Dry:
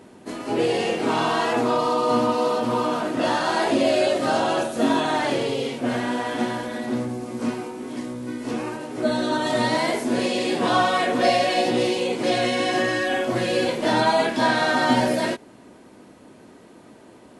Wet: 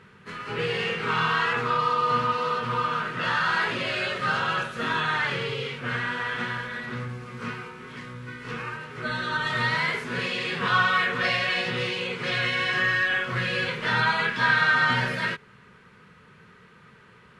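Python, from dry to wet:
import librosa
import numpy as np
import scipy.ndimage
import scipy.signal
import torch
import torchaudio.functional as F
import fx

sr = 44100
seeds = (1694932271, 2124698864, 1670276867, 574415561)

y = fx.curve_eq(x, sr, hz=(100.0, 170.0, 300.0, 440.0, 660.0, 1300.0, 2700.0, 9000.0), db=(0, 3, -23, -4, -19, 6, 2, -15))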